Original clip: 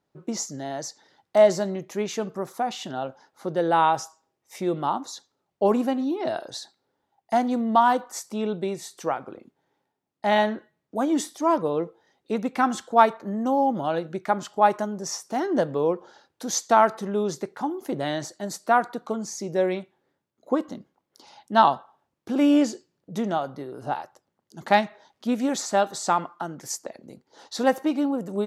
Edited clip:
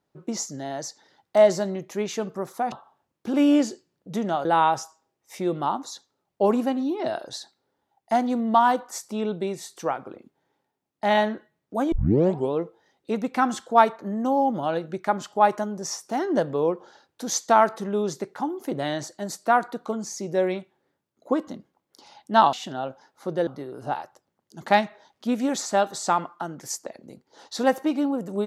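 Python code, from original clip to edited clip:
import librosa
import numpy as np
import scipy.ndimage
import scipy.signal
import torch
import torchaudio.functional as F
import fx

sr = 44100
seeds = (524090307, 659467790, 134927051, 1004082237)

y = fx.edit(x, sr, fx.swap(start_s=2.72, length_s=0.94, other_s=21.74, other_length_s=1.73),
    fx.tape_start(start_s=11.13, length_s=0.61), tone=tone)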